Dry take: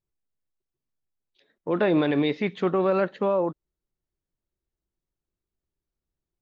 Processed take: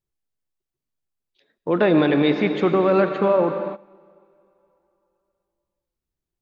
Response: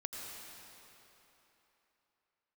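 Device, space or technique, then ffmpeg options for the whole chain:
keyed gated reverb: -filter_complex "[0:a]asplit=3[link_01][link_02][link_03];[1:a]atrim=start_sample=2205[link_04];[link_02][link_04]afir=irnorm=-1:irlink=0[link_05];[link_03]apad=whole_len=283018[link_06];[link_05][link_06]sidechaingate=range=-19dB:threshold=-59dB:ratio=16:detection=peak,volume=0.5dB[link_07];[link_01][link_07]amix=inputs=2:normalize=0"

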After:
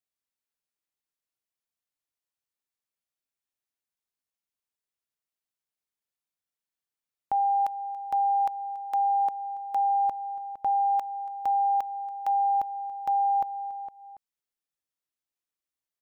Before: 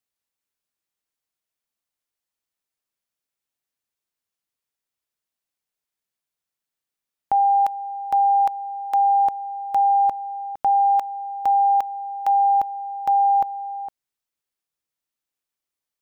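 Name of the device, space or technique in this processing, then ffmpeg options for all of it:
ducked delay: -filter_complex "[0:a]asplit=3[link_01][link_02][link_03];[link_02]adelay=282,volume=-8dB[link_04];[link_03]apad=whole_len=718842[link_05];[link_04][link_05]sidechaincompress=threshold=-45dB:ratio=3:attack=16:release=167[link_06];[link_01][link_06]amix=inputs=2:normalize=0,asplit=3[link_07][link_08][link_09];[link_07]afade=type=out:start_time=9.08:duration=0.02[link_10];[link_08]highpass=220,afade=type=in:start_time=9.08:duration=0.02,afade=type=out:start_time=9.88:duration=0.02[link_11];[link_09]afade=type=in:start_time=9.88:duration=0.02[link_12];[link_10][link_11][link_12]amix=inputs=3:normalize=0,volume=-7dB"

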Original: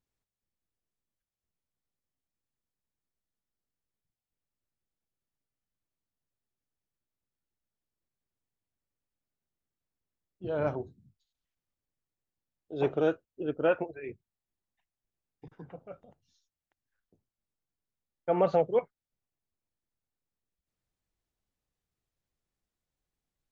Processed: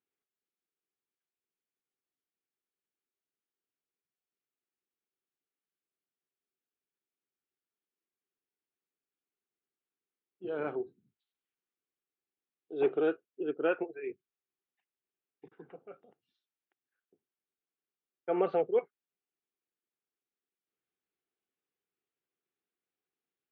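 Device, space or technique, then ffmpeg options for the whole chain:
phone earpiece: -af "highpass=330,equalizer=frequency=390:width_type=q:width=4:gain=6,equalizer=frequency=600:width_type=q:width=4:gain=-10,equalizer=frequency=960:width_type=q:width=4:gain=-8,equalizer=frequency=1900:width_type=q:width=4:gain=-3,lowpass=frequency=3100:width=0.5412,lowpass=frequency=3100:width=1.3066"

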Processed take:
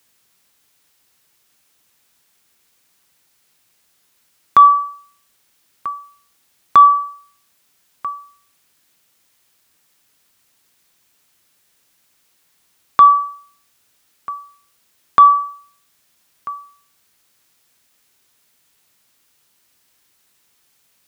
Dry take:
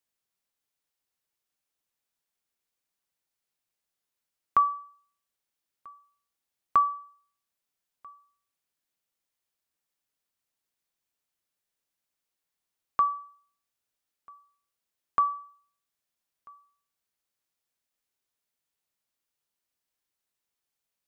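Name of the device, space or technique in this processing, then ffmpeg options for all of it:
mastering chain: -af "highpass=57,equalizer=frequency=620:width_type=o:width=1.4:gain=-3.5,acompressor=threshold=-27dB:ratio=2,asoftclip=type=tanh:threshold=-15.5dB,alimiter=level_in=25.5dB:limit=-1dB:release=50:level=0:latency=1,volume=-1dB"

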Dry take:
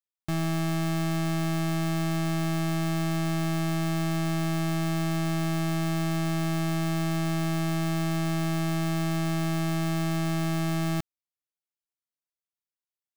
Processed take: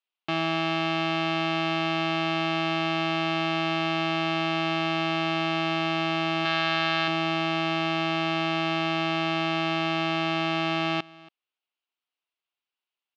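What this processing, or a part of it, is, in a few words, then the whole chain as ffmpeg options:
phone earpiece: -filter_complex "[0:a]highpass=400,equalizer=frequency=540:width_type=q:width=4:gain=-6,equalizer=frequency=1800:width_type=q:width=4:gain=-5,equalizer=frequency=2800:width_type=q:width=4:gain=7,lowpass=frequency=4000:width=0.5412,lowpass=frequency=4000:width=1.3066,asettb=1/sr,asplit=3[link_01][link_02][link_03];[link_01]atrim=end=6.454[link_04];[link_02]atrim=start=6.45:end=7.08,asetpts=PTS-STARTPTS,afade=type=in:duration=0.004:curve=qsin,afade=type=out:start_time=0.626:duration=0.004:curve=qsin,equalizer=frequency=250:width_type=o:width=0.67:gain=-10,equalizer=frequency=1600:width_type=o:width=0.67:gain=7,equalizer=frequency=4000:width_type=o:width=0.67:gain=6[link_05];[link_03]atrim=start=7.076[link_06];[link_04][link_05]acrossfade=duration=0.004:curve1=hsin:curve2=qsin[link_07];[link_07][link_06]acrossfade=duration=0.004:curve1=qsin:curve2=hsin,aecho=1:1:280:0.075,volume=8.5dB"

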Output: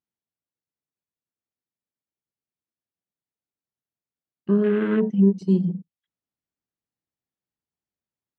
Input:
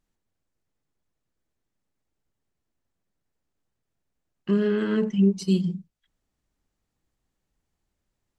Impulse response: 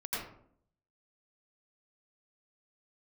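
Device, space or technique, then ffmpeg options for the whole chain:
over-cleaned archive recording: -af "highpass=110,lowpass=6500,afwtdn=0.0158,volume=3dB"

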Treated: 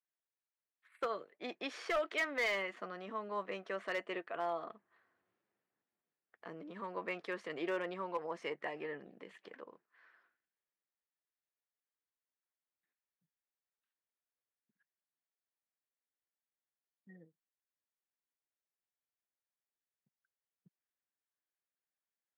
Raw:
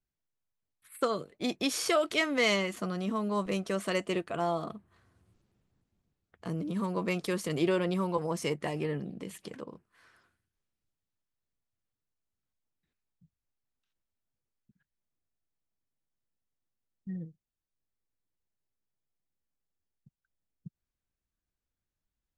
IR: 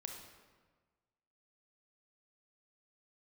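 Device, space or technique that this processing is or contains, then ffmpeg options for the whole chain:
megaphone: -af "highpass=450,lowpass=2600,equalizer=frequency=1800:width_type=o:width=0.44:gain=6,asoftclip=type=hard:threshold=-23dB,volume=-5.5dB"

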